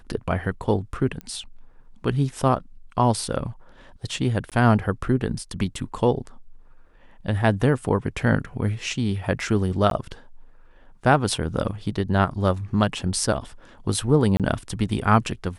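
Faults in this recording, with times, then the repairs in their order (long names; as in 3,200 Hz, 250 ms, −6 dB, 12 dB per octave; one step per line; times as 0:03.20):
0:01.21: click −20 dBFS
0:04.50–0:04.52: drop-out 17 ms
0:09.90–0:09.91: drop-out 12 ms
0:14.37–0:14.40: drop-out 27 ms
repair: click removal
repair the gap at 0:04.50, 17 ms
repair the gap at 0:09.90, 12 ms
repair the gap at 0:14.37, 27 ms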